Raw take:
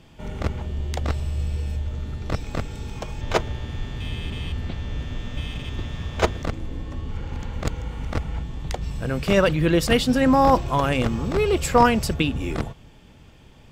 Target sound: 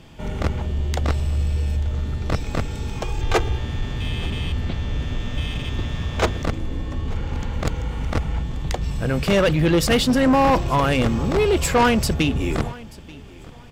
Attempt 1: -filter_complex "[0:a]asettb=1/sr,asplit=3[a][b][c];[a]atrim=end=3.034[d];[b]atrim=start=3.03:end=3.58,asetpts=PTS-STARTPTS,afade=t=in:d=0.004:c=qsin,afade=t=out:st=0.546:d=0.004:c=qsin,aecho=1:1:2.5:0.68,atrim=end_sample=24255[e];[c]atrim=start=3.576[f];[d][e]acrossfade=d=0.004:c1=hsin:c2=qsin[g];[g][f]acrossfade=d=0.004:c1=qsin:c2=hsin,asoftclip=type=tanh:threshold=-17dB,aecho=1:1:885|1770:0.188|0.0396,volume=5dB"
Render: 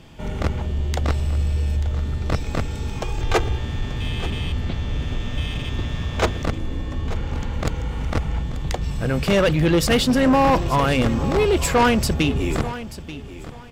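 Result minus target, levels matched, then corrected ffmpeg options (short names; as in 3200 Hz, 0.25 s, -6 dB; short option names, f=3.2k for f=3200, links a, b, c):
echo-to-direct +7 dB
-filter_complex "[0:a]asettb=1/sr,asplit=3[a][b][c];[a]atrim=end=3.034[d];[b]atrim=start=3.03:end=3.58,asetpts=PTS-STARTPTS,afade=t=in:d=0.004:c=qsin,afade=t=out:st=0.546:d=0.004:c=qsin,aecho=1:1:2.5:0.68,atrim=end_sample=24255[e];[c]atrim=start=3.576[f];[d][e]acrossfade=d=0.004:c1=hsin:c2=qsin[g];[g][f]acrossfade=d=0.004:c1=qsin:c2=hsin,asoftclip=type=tanh:threshold=-17dB,aecho=1:1:885|1770:0.0841|0.0177,volume=5dB"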